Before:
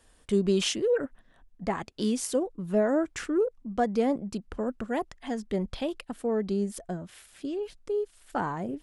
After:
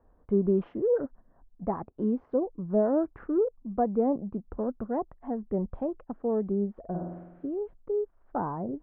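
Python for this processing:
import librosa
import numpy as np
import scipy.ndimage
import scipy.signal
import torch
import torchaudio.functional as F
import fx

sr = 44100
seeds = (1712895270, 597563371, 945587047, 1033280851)

y = scipy.signal.sosfilt(scipy.signal.butter(4, 1100.0, 'lowpass', fs=sr, output='sos'), x)
y = fx.room_flutter(y, sr, wall_m=8.8, rt60_s=1.0, at=(6.79, 7.49))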